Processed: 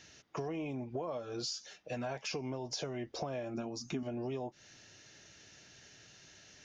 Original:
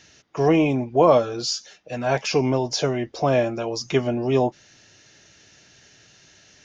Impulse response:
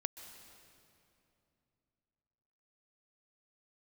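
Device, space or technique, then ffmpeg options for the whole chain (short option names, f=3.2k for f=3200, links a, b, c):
serial compression, leveller first: -filter_complex "[0:a]acompressor=threshold=-24dB:ratio=2,acompressor=threshold=-31dB:ratio=6,asettb=1/sr,asplit=3[a][b][c];[a]atrim=end=3.544[d];[b]atrim=start=3.54:end=4.03,asetpts=PTS-STARTPTS,afade=t=in:d=0.004:c=qsin,afade=t=out:st=0.486:d=0.004:c=qsin,equalizer=f=250:t=o:w=0.33:g=12,equalizer=f=500:t=o:w=0.33:g=-12,equalizer=f=1k:t=o:w=0.33:g=-5,equalizer=f=2k:t=o:w=0.33:g=-8,equalizer=f=3.15k:t=o:w=0.33:g=-8,equalizer=f=5k:t=o:w=0.33:g=-4[e];[c]atrim=start=4.026[f];[d][e]acrossfade=d=0.004:c1=hsin:c2=qsin[g];[g][f]acrossfade=d=0.004:c1=qsin:c2=hsin,volume=-5dB"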